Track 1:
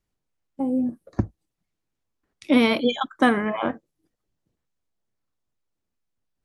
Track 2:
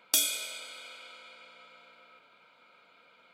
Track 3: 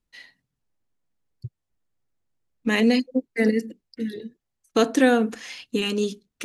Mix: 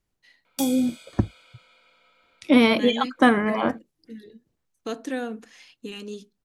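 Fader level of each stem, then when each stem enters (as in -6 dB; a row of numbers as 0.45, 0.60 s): +1.5, -7.0, -12.0 dB; 0.00, 0.45, 0.10 s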